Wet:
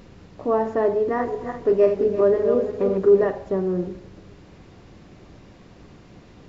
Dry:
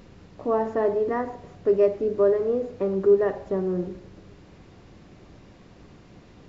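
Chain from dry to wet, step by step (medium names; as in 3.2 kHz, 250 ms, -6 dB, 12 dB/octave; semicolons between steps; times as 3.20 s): 1.01–3.28 s: backward echo that repeats 171 ms, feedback 52%, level -5.5 dB; trim +2.5 dB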